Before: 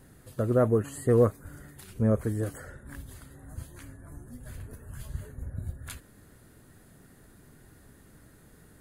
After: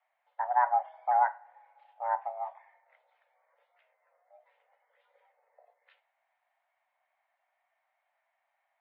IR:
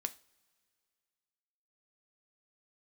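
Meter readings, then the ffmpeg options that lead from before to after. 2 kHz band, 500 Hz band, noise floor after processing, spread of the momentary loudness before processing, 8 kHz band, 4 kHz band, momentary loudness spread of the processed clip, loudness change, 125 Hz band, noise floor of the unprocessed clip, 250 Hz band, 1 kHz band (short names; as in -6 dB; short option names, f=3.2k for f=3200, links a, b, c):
+4.0 dB, -13.5 dB, -81 dBFS, 23 LU, under -30 dB, under -20 dB, 14 LU, -2.5 dB, under -40 dB, -57 dBFS, under -40 dB, +14.0 dB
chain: -filter_complex "[0:a]afwtdn=0.02[a];[1:a]atrim=start_sample=2205[b];[a][b]afir=irnorm=-1:irlink=0,highpass=f=340:t=q:w=0.5412,highpass=f=340:t=q:w=1.307,lowpass=f=3k:t=q:w=0.5176,lowpass=f=3k:t=q:w=0.7071,lowpass=f=3k:t=q:w=1.932,afreqshift=360"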